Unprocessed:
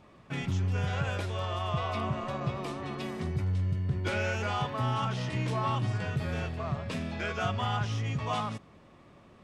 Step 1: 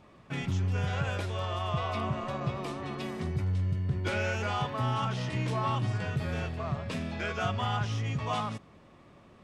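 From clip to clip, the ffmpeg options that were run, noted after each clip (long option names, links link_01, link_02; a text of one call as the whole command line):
ffmpeg -i in.wav -af anull out.wav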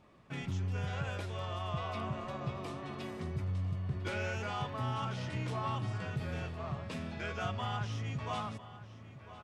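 ffmpeg -i in.wav -filter_complex "[0:a]asplit=2[link_01][link_02];[link_02]adelay=1001,lowpass=frequency=4800:poles=1,volume=-15dB,asplit=2[link_03][link_04];[link_04]adelay=1001,lowpass=frequency=4800:poles=1,volume=0.55,asplit=2[link_05][link_06];[link_06]adelay=1001,lowpass=frequency=4800:poles=1,volume=0.55,asplit=2[link_07][link_08];[link_08]adelay=1001,lowpass=frequency=4800:poles=1,volume=0.55,asplit=2[link_09][link_10];[link_10]adelay=1001,lowpass=frequency=4800:poles=1,volume=0.55[link_11];[link_01][link_03][link_05][link_07][link_09][link_11]amix=inputs=6:normalize=0,volume=-6dB" out.wav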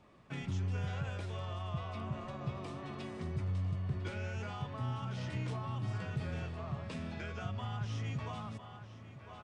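ffmpeg -i in.wav -filter_complex "[0:a]acrossover=split=250[link_01][link_02];[link_02]acompressor=threshold=-43dB:ratio=5[link_03];[link_01][link_03]amix=inputs=2:normalize=0,aresample=22050,aresample=44100" out.wav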